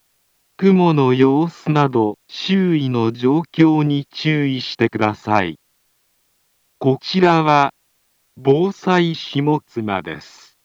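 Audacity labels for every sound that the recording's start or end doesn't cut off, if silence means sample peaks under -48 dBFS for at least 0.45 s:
0.590000	5.550000	sound
6.810000	7.700000	sound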